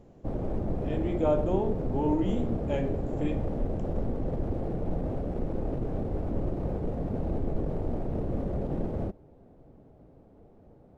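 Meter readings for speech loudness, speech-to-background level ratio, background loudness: -31.0 LUFS, 2.0 dB, -33.0 LUFS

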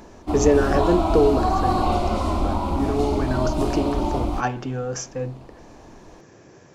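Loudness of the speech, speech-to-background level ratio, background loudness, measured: -24.5 LUFS, -0.5 dB, -24.0 LUFS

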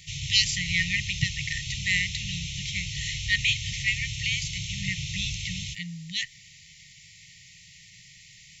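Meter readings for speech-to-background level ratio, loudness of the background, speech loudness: 5.0 dB, -33.0 LUFS, -28.0 LUFS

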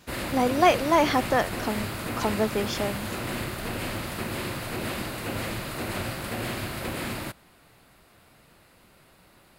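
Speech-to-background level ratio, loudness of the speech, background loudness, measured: 6.5 dB, -25.5 LUFS, -32.0 LUFS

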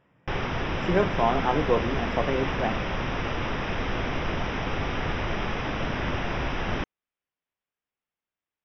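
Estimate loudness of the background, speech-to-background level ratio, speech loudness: -29.5 LUFS, 2.0 dB, -27.5 LUFS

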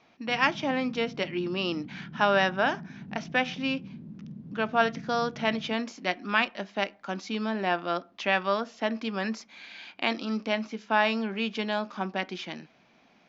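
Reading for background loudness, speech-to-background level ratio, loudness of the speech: -44.0 LUFS, 15.0 dB, -29.0 LUFS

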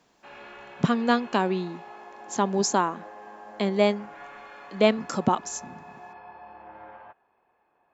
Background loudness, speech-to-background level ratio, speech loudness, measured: -45.0 LUFS, 19.0 dB, -26.0 LUFS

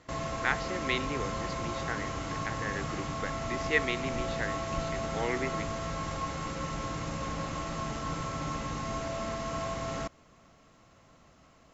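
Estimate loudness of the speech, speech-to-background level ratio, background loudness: -35.5 LUFS, -0.5 dB, -35.0 LUFS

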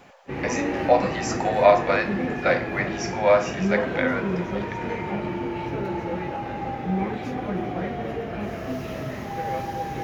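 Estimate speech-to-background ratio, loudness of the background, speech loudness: 5.0 dB, -28.5 LUFS, -23.5 LUFS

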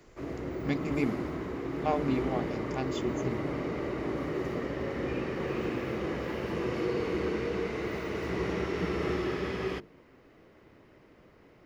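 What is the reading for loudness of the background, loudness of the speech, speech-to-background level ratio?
-33.5 LUFS, -35.0 LUFS, -1.5 dB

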